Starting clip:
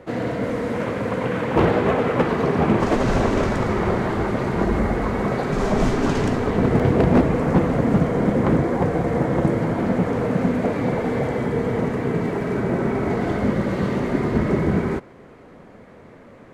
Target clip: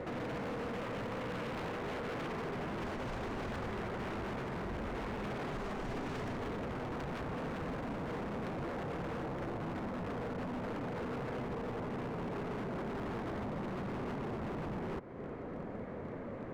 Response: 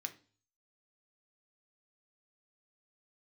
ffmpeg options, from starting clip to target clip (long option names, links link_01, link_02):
-af "asetnsamples=nb_out_samples=441:pad=0,asendcmd='9.23 lowpass f 1200',lowpass=frequency=2900:poles=1,alimiter=level_in=7dB:limit=-24dB:level=0:latency=1:release=295,volume=-7dB,aeval=exprs='0.0141*(abs(mod(val(0)/0.0141+3,4)-2)-1)':channel_layout=same,volume=3dB"